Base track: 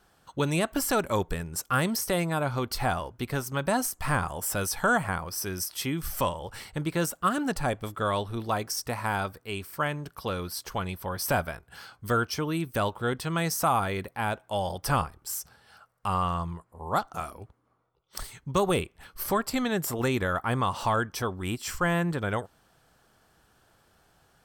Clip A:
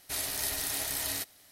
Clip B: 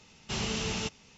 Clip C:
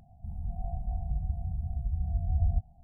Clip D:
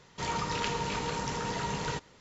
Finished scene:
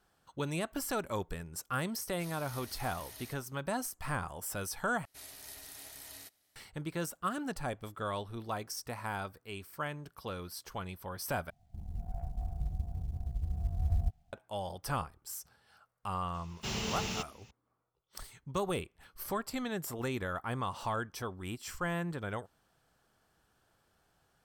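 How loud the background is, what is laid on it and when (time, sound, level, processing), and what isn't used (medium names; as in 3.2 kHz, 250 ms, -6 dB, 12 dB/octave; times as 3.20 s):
base track -9 dB
2.10 s: add A -16.5 dB + band-stop 7.6 kHz, Q 7
5.05 s: replace with A -16 dB
11.50 s: replace with C -3 dB + companding laws mixed up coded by A
16.34 s: add B -3.5 dB + block-companded coder 5-bit
not used: D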